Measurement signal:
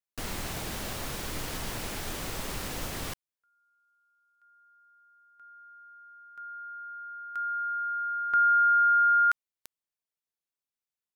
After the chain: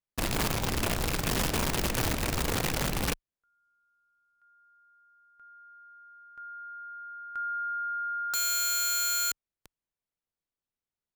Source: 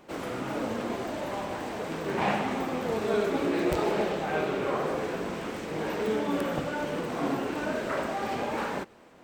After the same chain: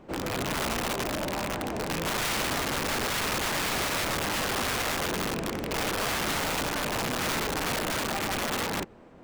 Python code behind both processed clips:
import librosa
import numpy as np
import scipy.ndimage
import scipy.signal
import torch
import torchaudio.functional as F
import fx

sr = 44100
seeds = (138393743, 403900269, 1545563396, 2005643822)

y = fx.rattle_buzz(x, sr, strikes_db=-38.0, level_db=-23.0)
y = fx.tilt_eq(y, sr, slope=-2.5)
y = (np.mod(10.0 ** (24.0 / 20.0) * y + 1.0, 2.0) - 1.0) / 10.0 ** (24.0 / 20.0)